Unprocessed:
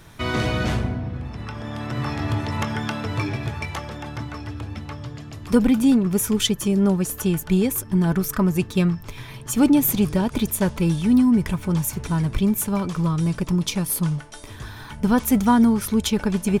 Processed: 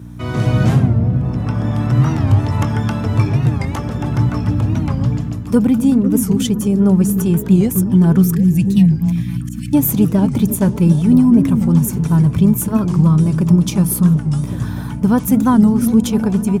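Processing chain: 8.35–9.73 spectral delete 230–1600 Hz; 9.29–9.7 auto swell 0.238 s; graphic EQ 125/2000/4000 Hz +10/-5/-6 dB; hum 60 Hz, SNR 10 dB; HPF 77 Hz 24 dB/oct; on a send: delay with a stepping band-pass 0.25 s, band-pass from 200 Hz, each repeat 0.7 oct, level -6 dB; on the sum: bit-crush 12-bit; AGC gain up to 11.5 dB; record warp 45 rpm, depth 160 cents; gain -1 dB

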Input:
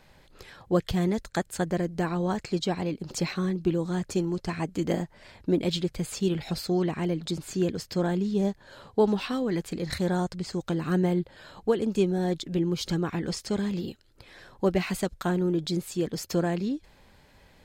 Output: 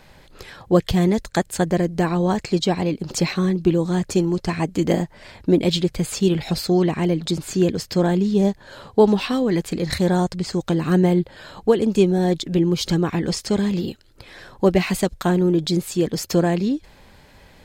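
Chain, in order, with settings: dynamic EQ 1400 Hz, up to -4 dB, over -51 dBFS, Q 3.6; gain +8 dB

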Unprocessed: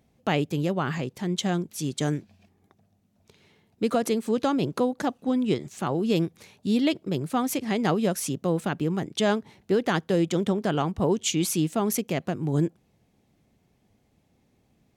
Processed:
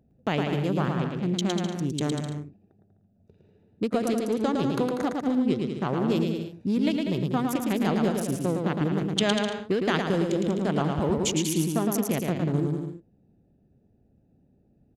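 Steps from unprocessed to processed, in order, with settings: Wiener smoothing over 41 samples; compressor 2.5:1, threshold -27 dBFS, peak gain reduction 6 dB; bouncing-ball echo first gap 0.11 s, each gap 0.75×, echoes 5; 9.11–10.02 dynamic EQ 2600 Hz, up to +6 dB, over -46 dBFS, Q 0.72; gain +2.5 dB

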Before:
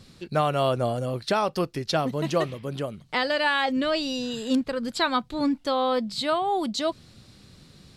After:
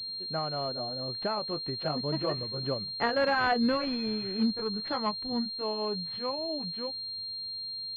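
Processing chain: gliding pitch shift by -3.5 st starting unshifted; Doppler pass-by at 3.41, 17 m/s, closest 18 m; pulse-width modulation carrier 4200 Hz

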